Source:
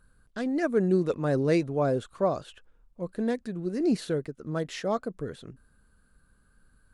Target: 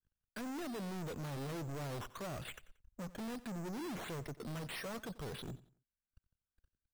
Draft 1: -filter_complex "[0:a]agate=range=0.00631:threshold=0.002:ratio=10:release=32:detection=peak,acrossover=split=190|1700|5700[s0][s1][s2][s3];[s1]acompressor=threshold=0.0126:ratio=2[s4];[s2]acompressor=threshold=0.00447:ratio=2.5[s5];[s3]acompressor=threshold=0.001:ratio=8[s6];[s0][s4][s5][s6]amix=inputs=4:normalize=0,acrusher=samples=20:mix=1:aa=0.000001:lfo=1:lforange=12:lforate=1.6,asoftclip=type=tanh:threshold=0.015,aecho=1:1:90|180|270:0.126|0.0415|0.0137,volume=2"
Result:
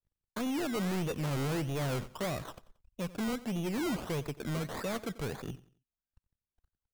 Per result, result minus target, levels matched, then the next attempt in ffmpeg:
decimation with a swept rate: distortion +8 dB; saturation: distortion -4 dB
-filter_complex "[0:a]agate=range=0.00631:threshold=0.002:ratio=10:release=32:detection=peak,acrossover=split=190|1700|5700[s0][s1][s2][s3];[s1]acompressor=threshold=0.0126:ratio=2[s4];[s2]acompressor=threshold=0.00447:ratio=2.5[s5];[s3]acompressor=threshold=0.001:ratio=8[s6];[s0][s4][s5][s6]amix=inputs=4:normalize=0,acrusher=samples=8:mix=1:aa=0.000001:lfo=1:lforange=4.8:lforate=1.6,asoftclip=type=tanh:threshold=0.015,aecho=1:1:90|180|270:0.126|0.0415|0.0137,volume=2"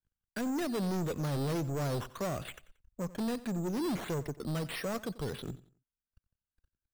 saturation: distortion -4 dB
-filter_complex "[0:a]agate=range=0.00631:threshold=0.002:ratio=10:release=32:detection=peak,acrossover=split=190|1700|5700[s0][s1][s2][s3];[s1]acompressor=threshold=0.0126:ratio=2[s4];[s2]acompressor=threshold=0.00447:ratio=2.5[s5];[s3]acompressor=threshold=0.001:ratio=8[s6];[s0][s4][s5][s6]amix=inputs=4:normalize=0,acrusher=samples=8:mix=1:aa=0.000001:lfo=1:lforange=4.8:lforate=1.6,asoftclip=type=tanh:threshold=0.00447,aecho=1:1:90|180|270:0.126|0.0415|0.0137,volume=2"

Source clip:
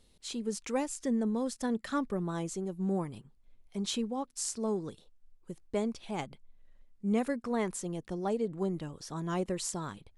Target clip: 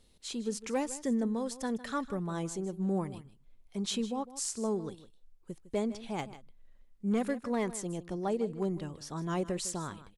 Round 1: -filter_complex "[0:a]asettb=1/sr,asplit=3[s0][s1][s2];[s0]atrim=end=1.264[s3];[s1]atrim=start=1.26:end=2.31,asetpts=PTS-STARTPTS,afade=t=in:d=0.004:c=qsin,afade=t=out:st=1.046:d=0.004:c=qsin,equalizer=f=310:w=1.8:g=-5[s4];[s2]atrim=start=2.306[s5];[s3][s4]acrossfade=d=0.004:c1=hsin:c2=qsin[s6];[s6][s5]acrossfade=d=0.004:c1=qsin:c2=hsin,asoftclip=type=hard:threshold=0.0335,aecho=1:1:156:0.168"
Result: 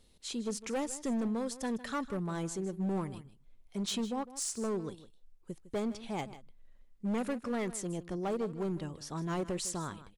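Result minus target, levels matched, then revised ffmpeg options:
hard clipper: distortion +14 dB
-filter_complex "[0:a]asettb=1/sr,asplit=3[s0][s1][s2];[s0]atrim=end=1.264[s3];[s1]atrim=start=1.26:end=2.31,asetpts=PTS-STARTPTS,afade=t=in:d=0.004:c=qsin,afade=t=out:st=1.046:d=0.004:c=qsin,equalizer=f=310:w=1.8:g=-5[s4];[s2]atrim=start=2.306[s5];[s3][s4]acrossfade=d=0.004:c1=hsin:c2=qsin[s6];[s6][s5]acrossfade=d=0.004:c1=qsin:c2=hsin,asoftclip=type=hard:threshold=0.0708,aecho=1:1:156:0.168"

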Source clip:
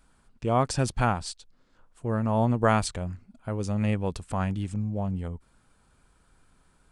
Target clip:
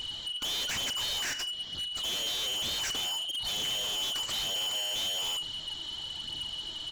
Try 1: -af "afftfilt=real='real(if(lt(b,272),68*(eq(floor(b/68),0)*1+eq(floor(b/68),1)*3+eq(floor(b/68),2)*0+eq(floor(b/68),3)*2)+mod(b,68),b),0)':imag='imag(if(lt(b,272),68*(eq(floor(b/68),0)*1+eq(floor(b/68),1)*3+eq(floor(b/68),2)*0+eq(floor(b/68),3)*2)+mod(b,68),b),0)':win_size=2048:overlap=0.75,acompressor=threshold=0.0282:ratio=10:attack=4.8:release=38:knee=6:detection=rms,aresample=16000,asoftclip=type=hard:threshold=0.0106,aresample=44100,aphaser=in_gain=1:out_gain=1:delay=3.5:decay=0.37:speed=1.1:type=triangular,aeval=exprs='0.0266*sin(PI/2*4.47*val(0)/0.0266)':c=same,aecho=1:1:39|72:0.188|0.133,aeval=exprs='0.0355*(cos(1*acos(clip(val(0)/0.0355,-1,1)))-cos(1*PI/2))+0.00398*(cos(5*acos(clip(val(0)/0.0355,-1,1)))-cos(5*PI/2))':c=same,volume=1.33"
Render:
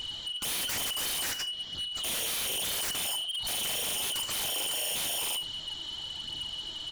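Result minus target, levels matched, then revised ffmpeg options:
hard clipper: distortion -4 dB
-af "afftfilt=real='real(if(lt(b,272),68*(eq(floor(b/68),0)*1+eq(floor(b/68),1)*3+eq(floor(b/68),2)*0+eq(floor(b/68),3)*2)+mod(b,68),b),0)':imag='imag(if(lt(b,272),68*(eq(floor(b/68),0)*1+eq(floor(b/68),1)*3+eq(floor(b/68),2)*0+eq(floor(b/68),3)*2)+mod(b,68),b),0)':win_size=2048:overlap=0.75,acompressor=threshold=0.0282:ratio=10:attack=4.8:release=38:knee=6:detection=rms,aresample=16000,asoftclip=type=hard:threshold=0.00299,aresample=44100,aphaser=in_gain=1:out_gain=1:delay=3.5:decay=0.37:speed=1.1:type=triangular,aeval=exprs='0.0266*sin(PI/2*4.47*val(0)/0.0266)':c=same,aecho=1:1:39|72:0.188|0.133,aeval=exprs='0.0355*(cos(1*acos(clip(val(0)/0.0355,-1,1)))-cos(1*PI/2))+0.00398*(cos(5*acos(clip(val(0)/0.0355,-1,1)))-cos(5*PI/2))':c=same,volume=1.33"

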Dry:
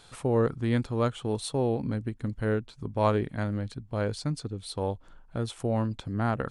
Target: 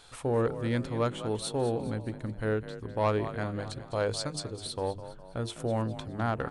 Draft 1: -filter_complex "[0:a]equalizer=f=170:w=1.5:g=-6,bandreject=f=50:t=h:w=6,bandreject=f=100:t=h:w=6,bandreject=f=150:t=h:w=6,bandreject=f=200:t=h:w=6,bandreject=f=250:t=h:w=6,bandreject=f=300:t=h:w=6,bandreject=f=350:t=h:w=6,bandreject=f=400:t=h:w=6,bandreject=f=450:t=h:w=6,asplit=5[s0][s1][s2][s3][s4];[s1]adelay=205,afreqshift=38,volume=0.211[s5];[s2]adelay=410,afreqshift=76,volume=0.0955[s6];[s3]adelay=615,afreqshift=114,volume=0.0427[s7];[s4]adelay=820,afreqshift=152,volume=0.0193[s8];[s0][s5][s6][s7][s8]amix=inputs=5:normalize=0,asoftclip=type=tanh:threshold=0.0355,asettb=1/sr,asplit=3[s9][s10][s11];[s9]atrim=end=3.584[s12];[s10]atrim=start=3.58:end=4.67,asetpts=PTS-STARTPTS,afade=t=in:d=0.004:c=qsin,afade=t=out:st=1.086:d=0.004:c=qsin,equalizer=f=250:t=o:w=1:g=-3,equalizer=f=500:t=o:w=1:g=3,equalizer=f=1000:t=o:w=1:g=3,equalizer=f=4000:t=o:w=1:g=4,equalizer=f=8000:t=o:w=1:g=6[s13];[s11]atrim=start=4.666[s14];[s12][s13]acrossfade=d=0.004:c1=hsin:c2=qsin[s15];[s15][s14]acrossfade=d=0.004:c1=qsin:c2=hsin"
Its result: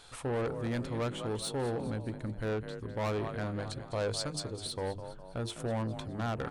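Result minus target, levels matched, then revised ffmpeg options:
saturation: distortion +13 dB
-filter_complex "[0:a]equalizer=f=170:w=1.5:g=-6,bandreject=f=50:t=h:w=6,bandreject=f=100:t=h:w=6,bandreject=f=150:t=h:w=6,bandreject=f=200:t=h:w=6,bandreject=f=250:t=h:w=6,bandreject=f=300:t=h:w=6,bandreject=f=350:t=h:w=6,bandreject=f=400:t=h:w=6,bandreject=f=450:t=h:w=6,asplit=5[s0][s1][s2][s3][s4];[s1]adelay=205,afreqshift=38,volume=0.211[s5];[s2]adelay=410,afreqshift=76,volume=0.0955[s6];[s3]adelay=615,afreqshift=114,volume=0.0427[s7];[s4]adelay=820,afreqshift=152,volume=0.0193[s8];[s0][s5][s6][s7][s8]amix=inputs=5:normalize=0,asoftclip=type=tanh:threshold=0.141,asettb=1/sr,asplit=3[s9][s10][s11];[s9]atrim=end=3.584[s12];[s10]atrim=start=3.58:end=4.67,asetpts=PTS-STARTPTS,afade=t=in:d=0.004:c=qsin,afade=t=out:st=1.086:d=0.004:c=qsin,equalizer=f=250:t=o:w=1:g=-3,equalizer=f=500:t=o:w=1:g=3,equalizer=f=1000:t=o:w=1:g=3,equalizer=f=4000:t=o:w=1:g=4,equalizer=f=8000:t=o:w=1:g=6[s13];[s11]atrim=start=4.666[s14];[s12][s13]acrossfade=d=0.004:c1=hsin:c2=qsin[s15];[s15][s14]acrossfade=d=0.004:c1=qsin:c2=hsin"

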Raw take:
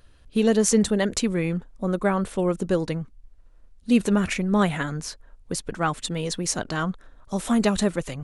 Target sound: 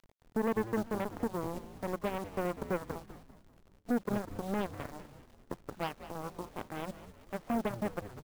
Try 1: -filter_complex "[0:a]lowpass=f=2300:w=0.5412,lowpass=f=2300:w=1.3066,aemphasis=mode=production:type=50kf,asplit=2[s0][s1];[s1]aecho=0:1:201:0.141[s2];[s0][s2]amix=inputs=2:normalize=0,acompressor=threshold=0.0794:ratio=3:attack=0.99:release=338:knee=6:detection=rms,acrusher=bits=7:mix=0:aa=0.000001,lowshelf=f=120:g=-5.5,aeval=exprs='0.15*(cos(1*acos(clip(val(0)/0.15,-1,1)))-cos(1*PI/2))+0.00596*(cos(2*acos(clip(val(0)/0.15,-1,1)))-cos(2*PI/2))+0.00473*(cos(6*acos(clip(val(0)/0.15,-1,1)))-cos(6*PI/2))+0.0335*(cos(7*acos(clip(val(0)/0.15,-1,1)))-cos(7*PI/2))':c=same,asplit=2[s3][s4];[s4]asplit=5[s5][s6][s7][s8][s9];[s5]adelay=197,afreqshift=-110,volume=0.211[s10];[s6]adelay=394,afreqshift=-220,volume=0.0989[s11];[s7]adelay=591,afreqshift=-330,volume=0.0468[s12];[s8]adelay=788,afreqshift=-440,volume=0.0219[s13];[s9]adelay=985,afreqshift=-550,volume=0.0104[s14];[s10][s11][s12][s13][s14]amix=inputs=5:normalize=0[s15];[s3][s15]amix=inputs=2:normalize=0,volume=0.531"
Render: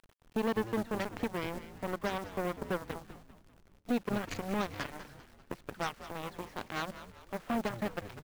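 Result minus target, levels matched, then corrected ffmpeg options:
2 kHz band +4.0 dB
-filter_complex "[0:a]lowpass=f=1000:w=0.5412,lowpass=f=1000:w=1.3066,aemphasis=mode=production:type=50kf,asplit=2[s0][s1];[s1]aecho=0:1:201:0.141[s2];[s0][s2]amix=inputs=2:normalize=0,acompressor=threshold=0.0794:ratio=3:attack=0.99:release=338:knee=6:detection=rms,acrusher=bits=7:mix=0:aa=0.000001,lowshelf=f=120:g=-5.5,aeval=exprs='0.15*(cos(1*acos(clip(val(0)/0.15,-1,1)))-cos(1*PI/2))+0.00596*(cos(2*acos(clip(val(0)/0.15,-1,1)))-cos(2*PI/2))+0.00473*(cos(6*acos(clip(val(0)/0.15,-1,1)))-cos(6*PI/2))+0.0335*(cos(7*acos(clip(val(0)/0.15,-1,1)))-cos(7*PI/2))':c=same,asplit=2[s3][s4];[s4]asplit=5[s5][s6][s7][s8][s9];[s5]adelay=197,afreqshift=-110,volume=0.211[s10];[s6]adelay=394,afreqshift=-220,volume=0.0989[s11];[s7]adelay=591,afreqshift=-330,volume=0.0468[s12];[s8]adelay=788,afreqshift=-440,volume=0.0219[s13];[s9]adelay=985,afreqshift=-550,volume=0.0104[s14];[s10][s11][s12][s13][s14]amix=inputs=5:normalize=0[s15];[s3][s15]amix=inputs=2:normalize=0,volume=0.531"

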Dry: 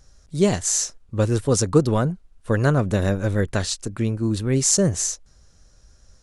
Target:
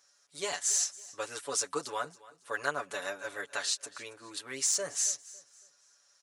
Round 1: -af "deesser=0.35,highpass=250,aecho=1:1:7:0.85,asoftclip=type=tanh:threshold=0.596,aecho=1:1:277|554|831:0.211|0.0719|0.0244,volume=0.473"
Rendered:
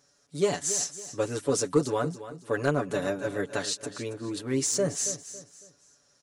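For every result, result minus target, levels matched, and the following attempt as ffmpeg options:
250 Hz band +15.0 dB; echo-to-direct +6.5 dB
-af "deesser=0.35,highpass=970,aecho=1:1:7:0.85,asoftclip=type=tanh:threshold=0.596,aecho=1:1:277|554|831:0.211|0.0719|0.0244,volume=0.473"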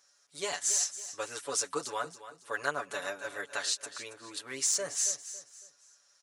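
echo-to-direct +6.5 dB
-af "deesser=0.35,highpass=970,aecho=1:1:7:0.85,asoftclip=type=tanh:threshold=0.596,aecho=1:1:277|554|831:0.1|0.034|0.0116,volume=0.473"

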